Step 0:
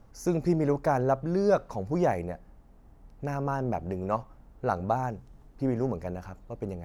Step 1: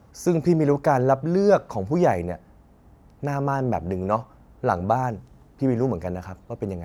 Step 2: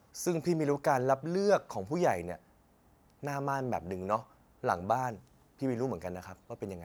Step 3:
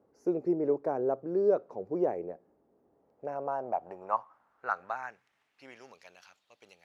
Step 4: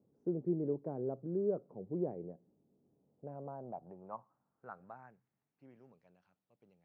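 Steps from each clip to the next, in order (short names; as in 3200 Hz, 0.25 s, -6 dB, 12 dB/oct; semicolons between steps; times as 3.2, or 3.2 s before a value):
HPF 52 Hz 24 dB/oct; gain +6 dB
tilt +2 dB/oct; gain -7 dB
band-pass sweep 400 Hz -> 3400 Hz, 2.82–5.98; gain +4.5 dB
band-pass 150 Hz, Q 1.8; gain +4.5 dB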